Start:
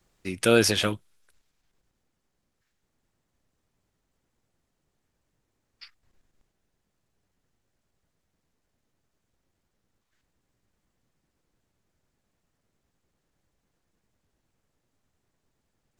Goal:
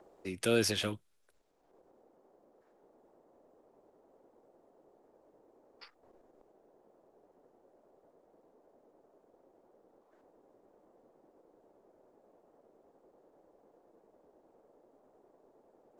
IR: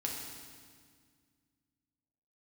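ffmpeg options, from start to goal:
-filter_complex "[0:a]acrossover=split=370|730|1700[a][b][c][d];[b]acompressor=mode=upward:threshold=-30dB:ratio=2.5[e];[c]asoftclip=type=tanh:threshold=-35dB[f];[a][e][f][d]amix=inputs=4:normalize=0,volume=-8.5dB"

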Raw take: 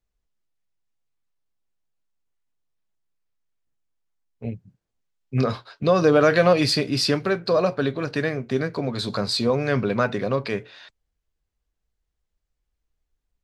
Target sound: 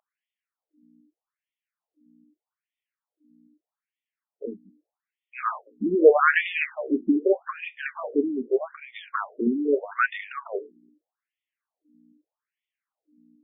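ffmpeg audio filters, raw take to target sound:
-af "aeval=exprs='val(0)+0.00282*(sin(2*PI*60*n/s)+sin(2*PI*2*60*n/s)/2+sin(2*PI*3*60*n/s)/3+sin(2*PI*4*60*n/s)/4+sin(2*PI*5*60*n/s)/5)':c=same,afftfilt=real='re*between(b*sr/1024,270*pow(2600/270,0.5+0.5*sin(2*PI*0.81*pts/sr))/1.41,270*pow(2600/270,0.5+0.5*sin(2*PI*0.81*pts/sr))*1.41)':imag='im*between(b*sr/1024,270*pow(2600/270,0.5+0.5*sin(2*PI*0.81*pts/sr))/1.41,270*pow(2600/270,0.5+0.5*sin(2*PI*0.81*pts/sr))*1.41)':win_size=1024:overlap=0.75,volume=5.5dB"

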